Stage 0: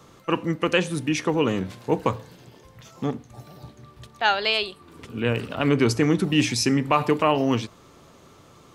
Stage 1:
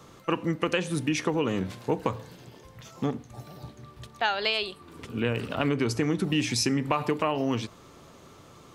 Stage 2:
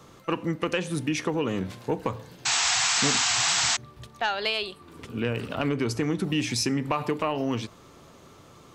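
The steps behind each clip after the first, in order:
compression, threshold -22 dBFS, peak gain reduction 8 dB
saturation -12 dBFS, distortion -26 dB; painted sound noise, 2.45–3.77 s, 660–8100 Hz -24 dBFS

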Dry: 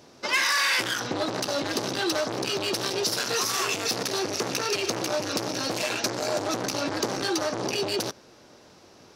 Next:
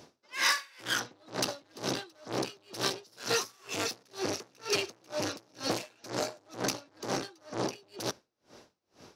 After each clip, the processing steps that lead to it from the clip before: logarithmic tremolo 2.1 Hz, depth 35 dB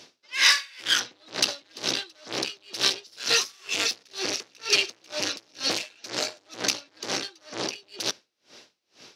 frequency weighting D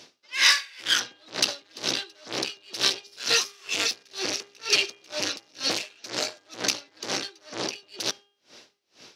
de-hum 403.7 Hz, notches 8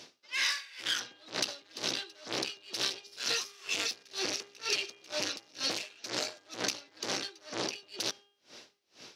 compression 4:1, threshold -28 dBFS, peak gain reduction 12 dB; trim -1.5 dB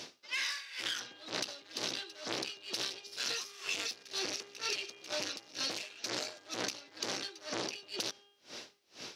compression 5:1, threshold -39 dBFS, peak gain reduction 12 dB; trim +5 dB

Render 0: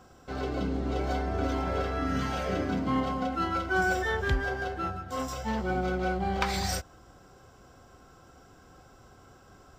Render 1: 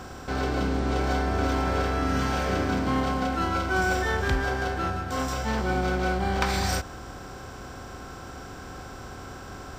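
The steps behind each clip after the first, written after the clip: spectral levelling over time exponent 0.6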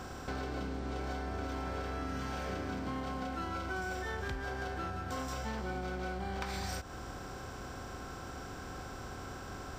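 compression 6:1, threshold -31 dBFS, peak gain reduction 11 dB; trim -4 dB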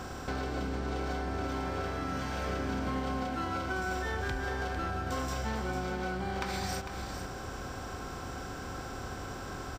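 delay 451 ms -8.5 dB; trim +3.5 dB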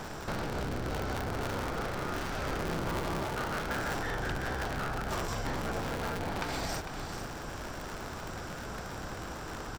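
cycle switcher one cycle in 2, inverted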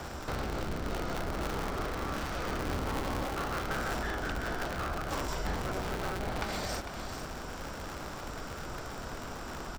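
frequency shift -79 Hz

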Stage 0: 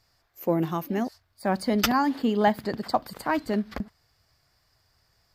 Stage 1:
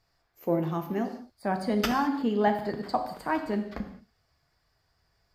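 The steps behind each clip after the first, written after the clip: treble shelf 4.2 kHz -8.5 dB; gated-style reverb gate 240 ms falling, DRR 4.5 dB; trim -3.5 dB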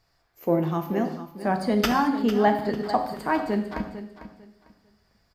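feedback delay 449 ms, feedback 23%, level -12.5 dB; trim +4 dB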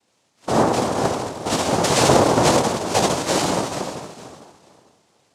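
FDN reverb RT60 1.6 s, low-frequency decay 0.7×, high-frequency decay 0.95×, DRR -3.5 dB; noise-vocoded speech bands 2

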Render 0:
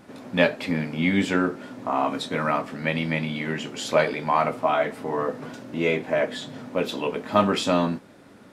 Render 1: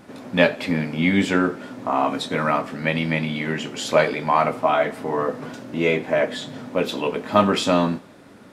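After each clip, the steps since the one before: thinning echo 87 ms, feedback 52%, level -23 dB; trim +3 dB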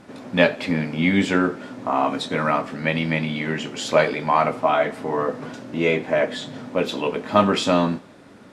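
low-pass 9.9 kHz 12 dB/octave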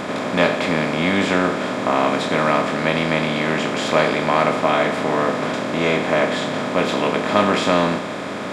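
spectral levelling over time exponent 0.4; trim -4 dB

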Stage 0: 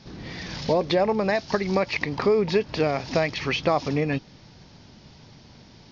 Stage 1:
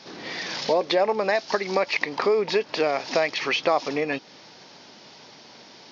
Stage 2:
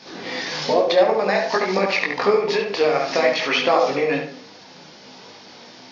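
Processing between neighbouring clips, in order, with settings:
high-pass 400 Hz 12 dB/octave; in parallel at +1.5 dB: compression, threshold -35 dBFS, peak gain reduction 16 dB
filtered feedback delay 71 ms, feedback 34%, low-pass 2.9 kHz, level -4 dB; on a send at -10 dB: reverberation RT60 0.60 s, pre-delay 3 ms; on the sum: detune thickener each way 19 cents; trim +6.5 dB

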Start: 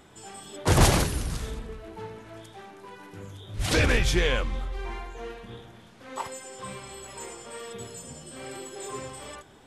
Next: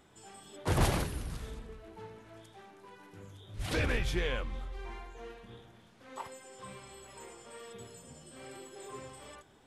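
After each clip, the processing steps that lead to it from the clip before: dynamic bell 6.6 kHz, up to -6 dB, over -47 dBFS, Q 0.95; trim -8.5 dB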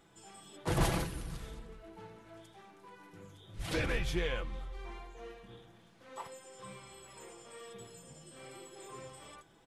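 comb 6 ms, depth 44%; trim -2.5 dB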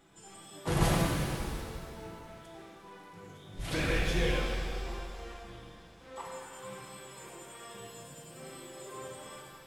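pitch-shifted reverb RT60 2.1 s, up +7 st, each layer -8 dB, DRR -1.5 dB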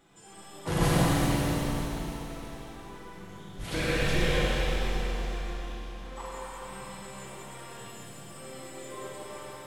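Schroeder reverb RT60 3.5 s, combs from 31 ms, DRR -2.5 dB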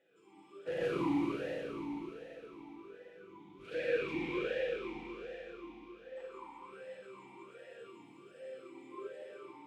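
talking filter e-u 1.3 Hz; trim +3 dB

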